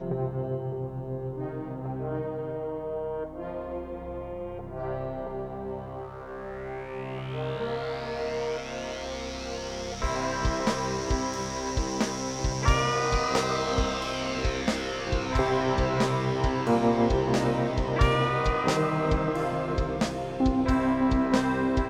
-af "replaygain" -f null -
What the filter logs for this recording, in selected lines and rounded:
track_gain = +9.1 dB
track_peak = 0.227